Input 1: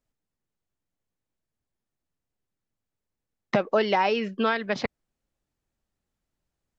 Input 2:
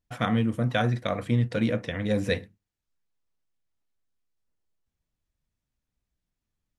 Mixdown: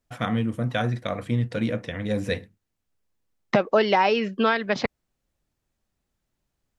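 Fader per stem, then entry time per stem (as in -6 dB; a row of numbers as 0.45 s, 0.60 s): +3.0 dB, -0.5 dB; 0.00 s, 0.00 s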